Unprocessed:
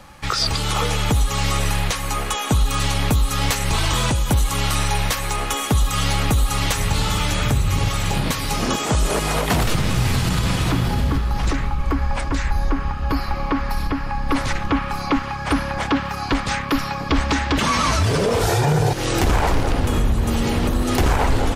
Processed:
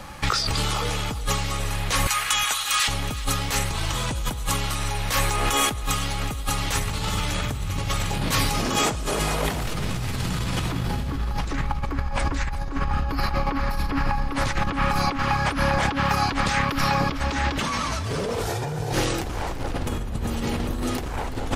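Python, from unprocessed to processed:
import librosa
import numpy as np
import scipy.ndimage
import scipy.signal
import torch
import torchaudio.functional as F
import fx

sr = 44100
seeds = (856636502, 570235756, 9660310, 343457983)

y = fx.cheby1_highpass(x, sr, hz=1600.0, order=2, at=(2.07, 2.88))
y = fx.over_compress(y, sr, threshold_db=-25.0, ratio=-1.0)
y = fx.echo_feedback(y, sr, ms=368, feedback_pct=36, wet_db=-16.0)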